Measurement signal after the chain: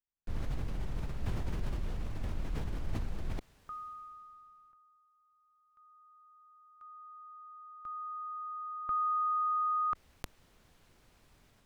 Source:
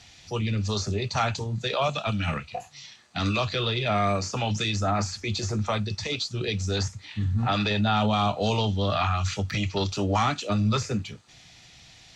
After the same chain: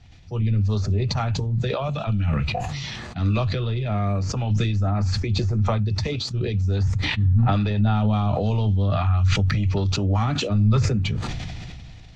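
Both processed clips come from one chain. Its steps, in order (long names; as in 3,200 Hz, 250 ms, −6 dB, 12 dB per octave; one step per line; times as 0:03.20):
RIAA equalisation playback
level that may fall only so fast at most 21 dB per second
level −6 dB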